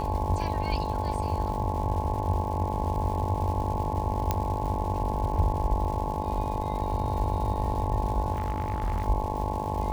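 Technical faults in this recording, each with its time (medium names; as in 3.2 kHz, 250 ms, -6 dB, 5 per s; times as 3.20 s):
buzz 50 Hz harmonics 22 -33 dBFS
crackle 370 per s -37 dBFS
whine 860 Hz -33 dBFS
4.31 s: pop -11 dBFS
8.33–9.06 s: clipped -23.5 dBFS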